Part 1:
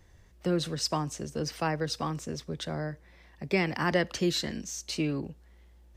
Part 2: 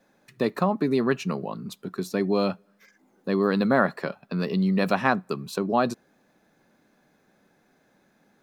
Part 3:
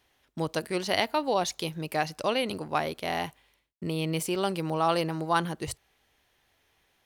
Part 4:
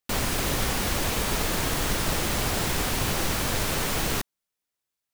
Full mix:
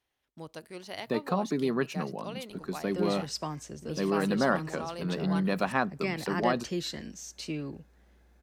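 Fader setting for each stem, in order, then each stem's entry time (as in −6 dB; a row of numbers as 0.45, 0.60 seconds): −5.5 dB, −5.5 dB, −13.5 dB, muted; 2.50 s, 0.70 s, 0.00 s, muted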